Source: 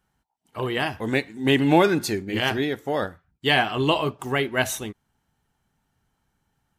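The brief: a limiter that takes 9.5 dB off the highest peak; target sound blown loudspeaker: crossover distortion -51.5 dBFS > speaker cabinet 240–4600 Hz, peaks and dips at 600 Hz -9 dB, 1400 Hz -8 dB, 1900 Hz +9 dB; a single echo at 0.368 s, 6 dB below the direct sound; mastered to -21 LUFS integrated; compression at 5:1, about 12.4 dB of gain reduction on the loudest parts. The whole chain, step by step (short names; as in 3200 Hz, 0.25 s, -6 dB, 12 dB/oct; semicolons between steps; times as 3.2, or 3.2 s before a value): compressor 5:1, threshold -26 dBFS; limiter -23.5 dBFS; echo 0.368 s -6 dB; crossover distortion -51.5 dBFS; speaker cabinet 240–4600 Hz, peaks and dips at 600 Hz -9 dB, 1400 Hz -8 dB, 1900 Hz +9 dB; gain +13.5 dB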